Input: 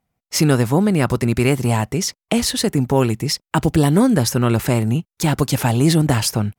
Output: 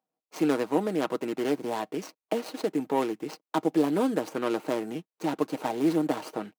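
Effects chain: median filter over 25 samples; high-pass 270 Hz 24 dB/octave; comb 6.4 ms, depth 42%; trim -6.5 dB

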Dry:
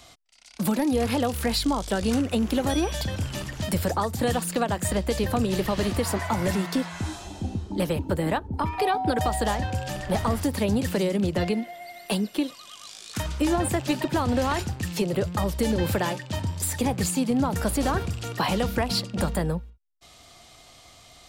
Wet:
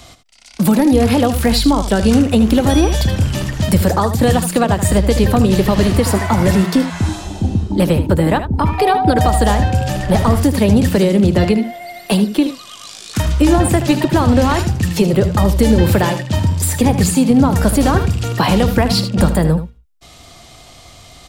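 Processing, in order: bass shelf 320 Hz +6 dB; delay 77 ms -11 dB; trim +8.5 dB

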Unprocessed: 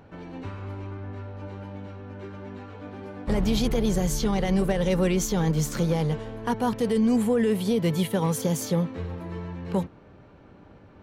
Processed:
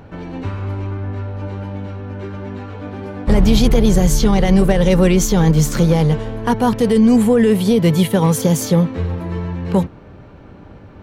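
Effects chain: bass shelf 120 Hz +6 dB; trim +9 dB

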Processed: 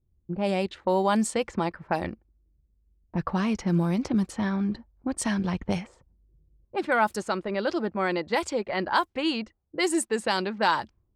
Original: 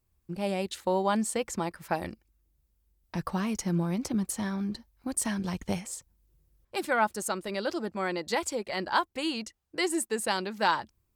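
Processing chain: level-controlled noise filter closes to 360 Hz, open at -23.5 dBFS; in parallel at -2 dB: peak limiter -22.5 dBFS, peak gain reduction 11 dB

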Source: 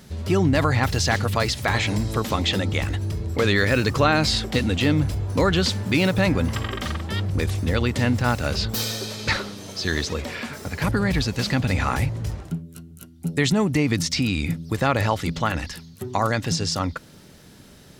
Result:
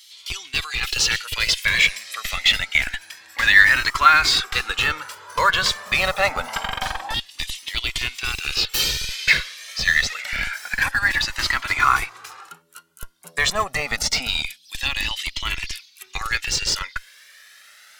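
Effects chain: LFO high-pass saw down 0.14 Hz 790–3400 Hz; in parallel at -8.5 dB: Schmitt trigger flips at -21 dBFS; on the sum: Shepard-style flanger rising 0.26 Hz; trim +7.5 dB

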